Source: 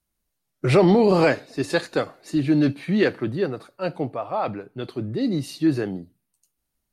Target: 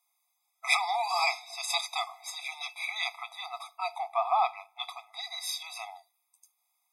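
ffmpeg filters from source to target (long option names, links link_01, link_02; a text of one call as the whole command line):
ffmpeg -i in.wav -filter_complex "[0:a]acrossover=split=250|3000[link_01][link_02][link_03];[link_02]acompressor=threshold=-28dB:ratio=4[link_04];[link_01][link_04][link_03]amix=inputs=3:normalize=0,afftfilt=real='re*eq(mod(floor(b*sr/1024/660),2),1)':imag='im*eq(mod(floor(b*sr/1024/660),2),1)':win_size=1024:overlap=0.75,volume=8dB" out.wav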